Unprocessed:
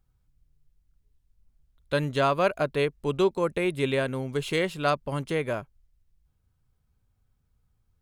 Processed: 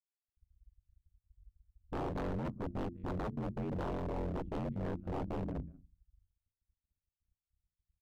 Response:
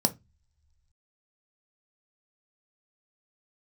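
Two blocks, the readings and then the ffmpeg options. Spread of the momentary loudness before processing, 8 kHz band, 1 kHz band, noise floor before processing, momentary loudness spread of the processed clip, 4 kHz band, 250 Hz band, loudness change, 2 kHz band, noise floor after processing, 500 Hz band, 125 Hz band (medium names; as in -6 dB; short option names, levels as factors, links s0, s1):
5 LU, under -20 dB, -13.0 dB, -72 dBFS, 3 LU, -23.5 dB, -8.0 dB, -12.5 dB, -21.0 dB, under -85 dBFS, -16.0 dB, -7.0 dB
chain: -filter_complex "[0:a]firequalizer=gain_entry='entry(240,0);entry(390,-23);entry(560,-27);entry(850,-29)':delay=0.05:min_phase=1,asplit=2[s0][s1];[s1]adelay=85,lowpass=f=2000:p=1,volume=0.15,asplit=2[s2][s3];[s3]adelay=85,lowpass=f=2000:p=1,volume=0.34,asplit=2[s4][s5];[s5]adelay=85,lowpass=f=2000:p=1,volume=0.34[s6];[s2][s4][s6]amix=inputs=3:normalize=0[s7];[s0][s7]amix=inputs=2:normalize=0,dynaudnorm=f=150:g=5:m=3.76,aemphasis=mode=production:type=cd,aeval=exprs='sgn(val(0))*max(abs(val(0))-0.00211,0)':c=same,anlmdn=25.1,bandreject=f=60:t=h:w=6,bandreject=f=120:t=h:w=6,bandreject=f=180:t=h:w=6,bandreject=f=240:t=h:w=6,bandreject=f=300:t=h:w=6,asplit=2[s8][s9];[s9]aecho=0:1:189:0.0891[s10];[s8][s10]amix=inputs=2:normalize=0,aeval=exprs='val(0)*sin(2*PI*45*n/s)':c=same,aeval=exprs='0.0398*(abs(mod(val(0)/0.0398+3,4)-2)-1)':c=same,volume=0.668"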